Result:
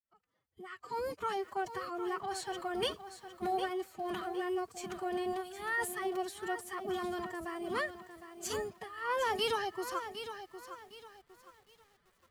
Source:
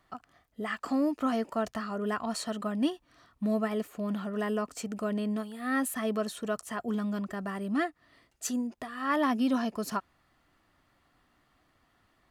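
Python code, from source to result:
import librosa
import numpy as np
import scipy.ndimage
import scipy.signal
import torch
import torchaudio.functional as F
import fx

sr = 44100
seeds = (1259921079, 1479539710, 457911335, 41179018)

y = fx.fade_in_head(x, sr, length_s=1.52)
y = fx.pitch_keep_formants(y, sr, semitones=9.5)
y = fx.echo_crushed(y, sr, ms=759, feedback_pct=35, bits=9, wet_db=-10.0)
y = y * 10.0 ** (-5.0 / 20.0)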